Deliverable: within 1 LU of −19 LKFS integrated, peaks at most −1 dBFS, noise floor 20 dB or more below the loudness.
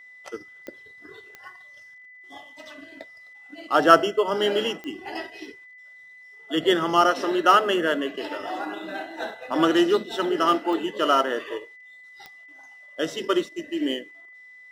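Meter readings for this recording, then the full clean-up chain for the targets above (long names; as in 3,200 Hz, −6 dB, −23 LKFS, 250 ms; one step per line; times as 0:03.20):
number of clicks 6; interfering tone 2,000 Hz; level of the tone −45 dBFS; integrated loudness −23.0 LKFS; sample peak −1.0 dBFS; target loudness −19.0 LKFS
→ click removal
notch filter 2,000 Hz, Q 30
level +4 dB
brickwall limiter −1 dBFS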